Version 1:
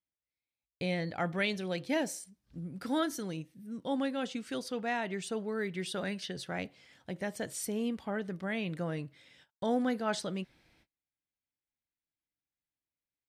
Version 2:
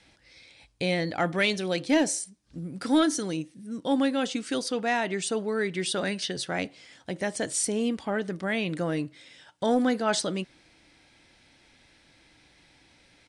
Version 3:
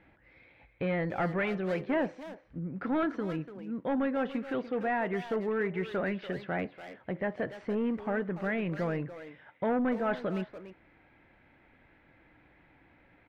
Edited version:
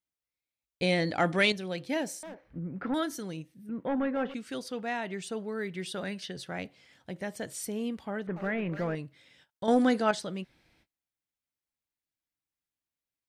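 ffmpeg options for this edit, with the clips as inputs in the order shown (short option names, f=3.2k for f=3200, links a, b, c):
-filter_complex "[1:a]asplit=2[a][b];[2:a]asplit=3[c][d][e];[0:a]asplit=6[f][g][h][i][j][k];[f]atrim=end=0.822[l];[a]atrim=start=0.818:end=1.522[m];[g]atrim=start=1.518:end=2.232[n];[c]atrim=start=2.228:end=2.942[o];[h]atrim=start=2.938:end=3.692[p];[d]atrim=start=3.688:end=4.342[q];[i]atrim=start=4.338:end=8.272[r];[e]atrim=start=8.268:end=8.952[s];[j]atrim=start=8.948:end=9.682[t];[b]atrim=start=9.678:end=10.112[u];[k]atrim=start=10.108[v];[l][m]acrossfade=d=0.004:c1=hsin:c2=hsin[w];[w][n]acrossfade=d=0.004:c1=hsin:c2=hsin[x];[x][o]acrossfade=d=0.004:c1=hsin:c2=hsin[y];[y][p]acrossfade=d=0.004:c1=hsin:c2=hsin[z];[z][q]acrossfade=d=0.004:c1=hsin:c2=hsin[aa];[aa][r]acrossfade=d=0.004:c1=hsin:c2=hsin[ab];[ab][s]acrossfade=d=0.004:c1=hsin:c2=hsin[ac];[ac][t]acrossfade=d=0.004:c1=hsin:c2=hsin[ad];[ad][u]acrossfade=d=0.004:c1=hsin:c2=hsin[ae];[ae][v]acrossfade=d=0.004:c1=hsin:c2=hsin"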